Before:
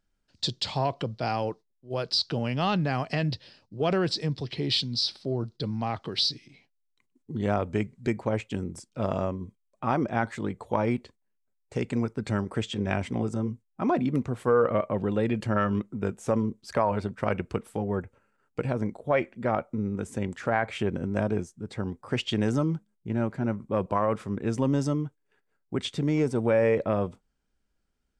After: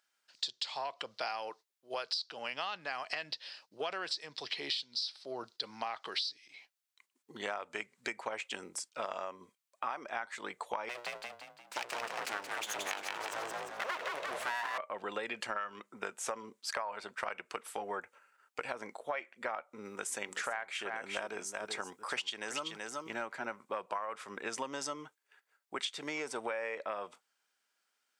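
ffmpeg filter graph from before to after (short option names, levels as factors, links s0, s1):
-filter_complex "[0:a]asettb=1/sr,asplit=3[s0][s1][s2];[s0]atrim=end=10.894[s3];[s1]atrim=start=10.89:end=14.78,asetpts=PTS-STARTPTS,afade=t=in:d=0.004:c=qsin,afade=t=out:st=3.886:d=0.004:c=qsin,bandreject=f=60:t=h:w=6,bandreject=f=120:t=h:w=6,bandreject=f=180:t=h:w=6,bandreject=f=240:t=h:w=6,bandreject=f=300:t=h:w=6,bandreject=f=360:t=h:w=6,aeval=exprs='abs(val(0))':c=same,asplit=7[s4][s5][s6][s7][s8][s9][s10];[s5]adelay=174,afreqshift=50,volume=0.631[s11];[s6]adelay=348,afreqshift=100,volume=0.285[s12];[s7]adelay=522,afreqshift=150,volume=0.127[s13];[s8]adelay=696,afreqshift=200,volume=0.0575[s14];[s9]adelay=870,afreqshift=250,volume=0.026[s15];[s10]adelay=1044,afreqshift=300,volume=0.0116[s16];[s4][s11][s12][s13][s14][s15][s16]amix=inputs=7:normalize=0,atrim=end_sample=171549[s17];[s2]atrim=start=14.776[s18];[s3][s17]acrossfade=d=0.004:c1=hsin:c2=qsin[s19];[s19][s18]acrossfade=d=0.004:c1=qsin:c2=hsin,asettb=1/sr,asplit=3[s20][s21][s22];[s20]atrim=end=19.854[s23];[s21]atrim=start=19.85:end=23.26,asetpts=PTS-STARTPTS,afade=t=in:d=0.004:c=qsin,afade=t=out:st=3.406:d=0.004:c=qsin,highshelf=f=5600:g=6,aecho=1:1:380:0.335,atrim=end_sample=150381[s24];[s22]atrim=start=23.256[s25];[s23][s24]acrossfade=d=0.004:c1=hsin:c2=qsin[s26];[s26][s25]acrossfade=d=0.004:c1=qsin:c2=hsin,highpass=1000,acompressor=threshold=0.00891:ratio=10,volume=2.24"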